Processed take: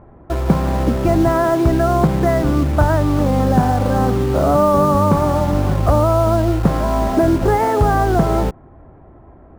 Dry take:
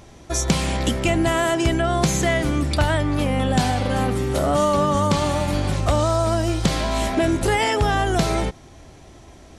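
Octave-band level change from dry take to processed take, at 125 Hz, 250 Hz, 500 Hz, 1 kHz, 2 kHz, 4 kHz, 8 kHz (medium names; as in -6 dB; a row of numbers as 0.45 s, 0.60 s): +5.5 dB, +5.5 dB, +5.5 dB, +5.0 dB, -2.5 dB, -8.0 dB, -7.5 dB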